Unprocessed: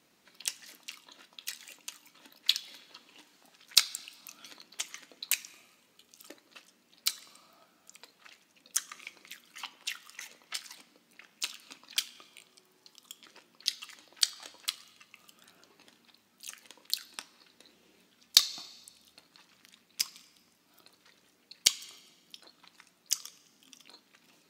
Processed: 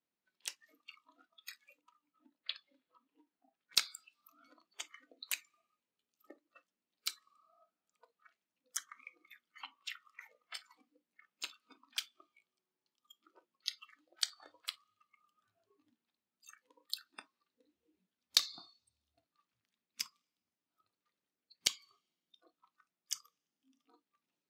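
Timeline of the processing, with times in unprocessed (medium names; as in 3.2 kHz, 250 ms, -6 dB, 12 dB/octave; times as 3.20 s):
1.81–3.72 s: low-pass 1.7 kHz 6 dB/octave
whole clip: spectral noise reduction 21 dB; treble shelf 4.3 kHz -6.5 dB; trim -4.5 dB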